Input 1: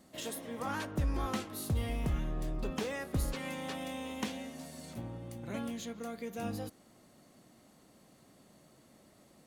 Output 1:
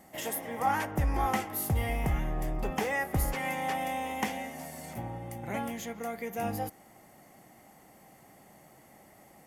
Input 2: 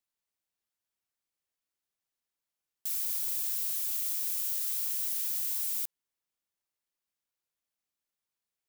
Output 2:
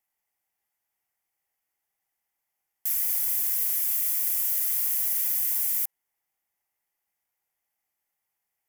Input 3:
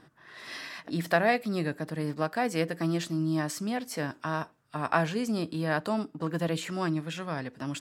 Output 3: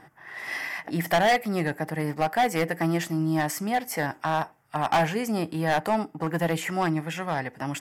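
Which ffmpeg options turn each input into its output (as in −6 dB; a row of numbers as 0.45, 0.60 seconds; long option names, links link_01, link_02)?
-af "equalizer=frequency=250:width_type=o:width=0.33:gain=-4,equalizer=frequency=800:width_type=o:width=0.33:gain=12,equalizer=frequency=2000:width_type=o:width=0.33:gain=9,equalizer=frequency=4000:width_type=o:width=0.33:gain=-10,equalizer=frequency=12500:width_type=o:width=0.33:gain=10,asoftclip=type=hard:threshold=-20.5dB,volume=3.5dB"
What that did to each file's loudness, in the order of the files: +5.5, +6.0, +4.0 LU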